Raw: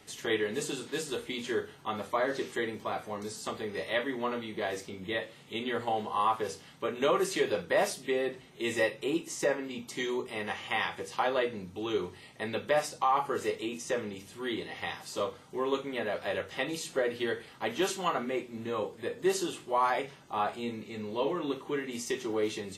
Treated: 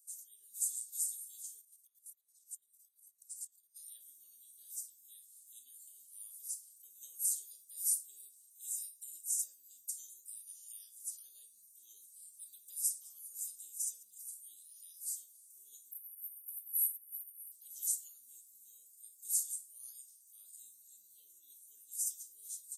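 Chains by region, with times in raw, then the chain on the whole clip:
1.61–3.76 compressor 20:1, threshold -43 dBFS + chopper 8.9 Hz, depth 60%, duty 35%
11.96–14.03 comb 6.2 ms, depth 61% + darkening echo 0.208 s, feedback 54%, low-pass 1500 Hz, level -5 dB
15.91–17.52 EQ curve 250 Hz 0 dB, 1600 Hz -10 dB, 6200 Hz -28 dB, 11000 Hz +13 dB + compressor, threshold -38 dBFS
whole clip: inverse Chebyshev high-pass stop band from 2300 Hz, stop band 70 dB; AGC gain up to 8 dB; gain +6 dB

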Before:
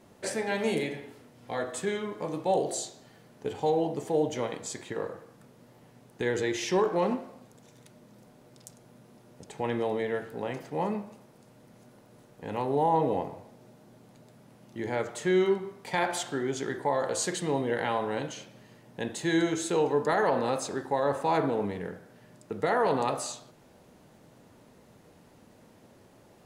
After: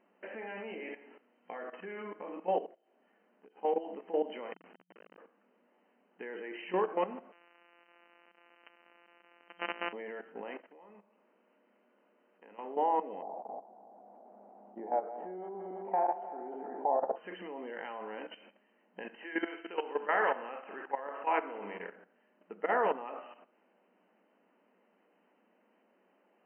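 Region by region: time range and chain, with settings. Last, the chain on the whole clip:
2.66–3.63 compressor 16:1, threshold -47 dBFS + bell 7300 Hz -7.5 dB 1.9 oct
4.53–5.18 LPF 5600 Hz + compressor 20:1, threshold -37 dBFS + Schmitt trigger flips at -37.5 dBFS
7.32–9.93 sample sorter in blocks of 256 samples + RIAA curve recording
10.6–12.59 HPF 220 Hz + bell 770 Hz -4.5 dB 0.21 oct + compressor 2.5:1, threshold -52 dBFS
13.22–17.16 regenerating reverse delay 0.166 s, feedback 62%, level -7.5 dB + compressor 2.5:1, threshold -30 dBFS + synth low-pass 750 Hz, resonance Q 5.8
19.03–21.96 tilt +2.5 dB/oct + thinning echo 65 ms, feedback 66%, high-pass 210 Hz, level -10 dB
whole clip: low shelf 320 Hz -9.5 dB; level quantiser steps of 14 dB; FFT band-pass 180–3100 Hz

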